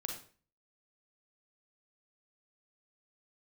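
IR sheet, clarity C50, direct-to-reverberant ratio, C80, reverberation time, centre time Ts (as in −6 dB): 4.5 dB, 1.5 dB, 9.5 dB, 0.40 s, 28 ms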